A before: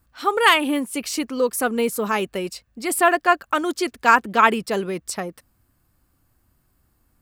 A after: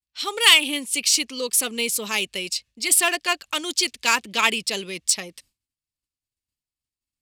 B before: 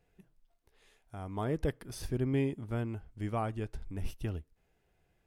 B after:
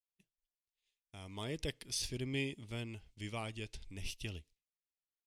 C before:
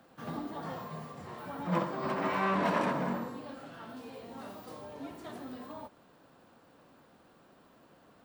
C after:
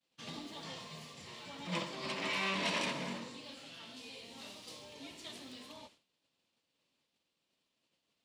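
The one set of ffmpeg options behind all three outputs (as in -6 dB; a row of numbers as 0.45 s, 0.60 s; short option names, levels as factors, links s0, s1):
-filter_complex "[0:a]bandreject=f=740:w=14,acrossover=split=680[s0][s1];[s1]adynamicsmooth=sensitivity=3:basefreq=6600[s2];[s0][s2]amix=inputs=2:normalize=0,agate=range=0.0224:threshold=0.00355:ratio=3:detection=peak,aexciter=amount=7:drive=7.6:freq=2200,volume=0.376"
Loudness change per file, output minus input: 0.0 LU, -5.5 LU, -4.5 LU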